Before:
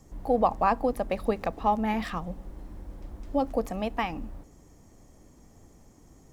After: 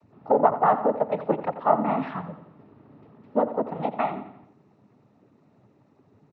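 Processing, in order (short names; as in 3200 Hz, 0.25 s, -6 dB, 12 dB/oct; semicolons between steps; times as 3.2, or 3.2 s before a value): treble ducked by the level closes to 2400 Hz, closed at -22 dBFS; dynamic EQ 730 Hz, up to +7 dB, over -37 dBFS, Q 0.86; noise vocoder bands 12; air absorption 370 m; feedback echo 87 ms, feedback 46%, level -13 dB; on a send at -22.5 dB: reverb RT60 0.45 s, pre-delay 0.118 s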